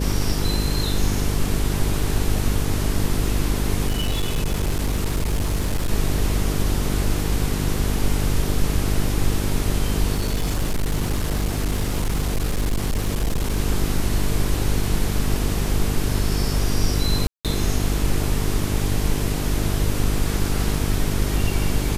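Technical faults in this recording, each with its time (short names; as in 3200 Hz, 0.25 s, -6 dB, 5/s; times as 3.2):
buzz 50 Hz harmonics 9 -24 dBFS
3.87–5.9 clipped -17.5 dBFS
10.16–13.58 clipped -17.5 dBFS
17.27–17.45 gap 0.177 s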